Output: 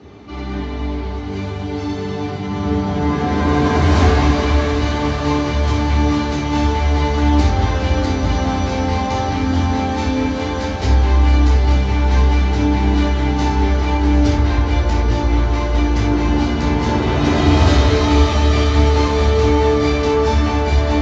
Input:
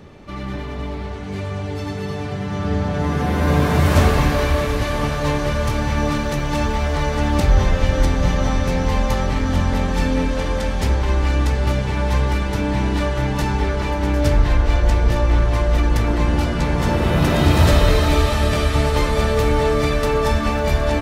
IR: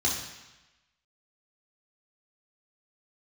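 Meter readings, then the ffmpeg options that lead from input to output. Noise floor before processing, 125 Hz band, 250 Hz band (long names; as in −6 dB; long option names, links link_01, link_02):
−27 dBFS, +2.5 dB, +4.5 dB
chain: -filter_complex "[0:a]lowpass=frequency=5900:width=0.5412,lowpass=frequency=5900:width=1.3066,lowshelf=frequency=92:gain=-9,asoftclip=type=tanh:threshold=-9dB[link_01];[1:a]atrim=start_sample=2205,afade=type=out:start_time=0.15:duration=0.01,atrim=end_sample=7056[link_02];[link_01][link_02]afir=irnorm=-1:irlink=0,volume=-6.5dB"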